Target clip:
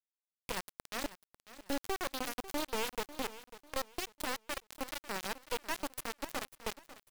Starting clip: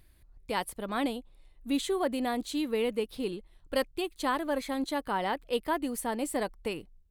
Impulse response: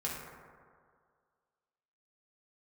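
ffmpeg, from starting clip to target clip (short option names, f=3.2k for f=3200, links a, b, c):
-af "acompressor=threshold=-55dB:ratio=2,acrusher=bits=4:dc=4:mix=0:aa=0.000001,aecho=1:1:546|1092|1638:0.168|0.0537|0.0172,volume=9.5dB"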